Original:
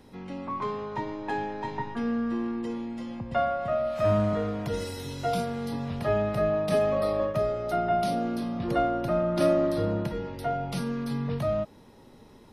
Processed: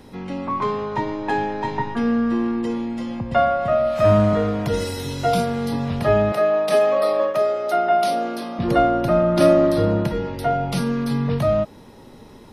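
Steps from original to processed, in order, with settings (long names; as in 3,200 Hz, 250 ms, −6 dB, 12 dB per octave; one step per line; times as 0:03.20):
0:06.32–0:08.59: high-pass filter 400 Hz 12 dB per octave
level +8.5 dB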